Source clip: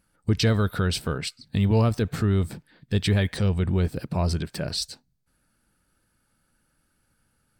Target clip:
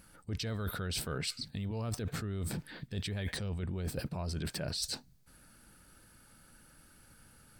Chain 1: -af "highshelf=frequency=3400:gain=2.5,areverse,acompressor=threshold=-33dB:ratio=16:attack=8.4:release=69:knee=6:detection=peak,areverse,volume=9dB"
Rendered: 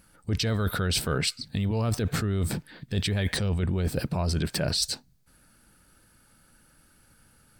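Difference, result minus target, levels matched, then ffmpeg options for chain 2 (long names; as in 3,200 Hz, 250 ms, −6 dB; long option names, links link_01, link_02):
downward compressor: peak gain reduction −10.5 dB
-af "highshelf=frequency=3400:gain=2.5,areverse,acompressor=threshold=-44dB:ratio=16:attack=8.4:release=69:knee=6:detection=peak,areverse,volume=9dB"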